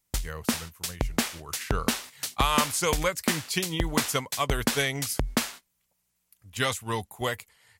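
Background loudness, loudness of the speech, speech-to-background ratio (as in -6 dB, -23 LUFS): -31.0 LUFS, -29.5 LUFS, 1.5 dB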